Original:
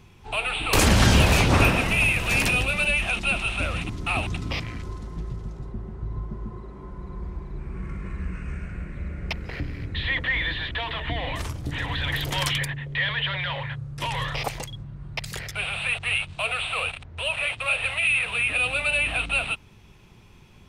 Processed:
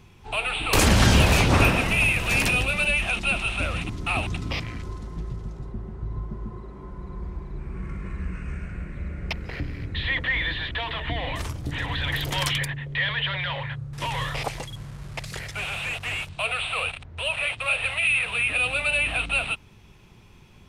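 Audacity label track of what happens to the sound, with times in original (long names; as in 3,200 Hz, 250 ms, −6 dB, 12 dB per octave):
13.930000	16.290000	linear delta modulator 64 kbit/s, step −40 dBFS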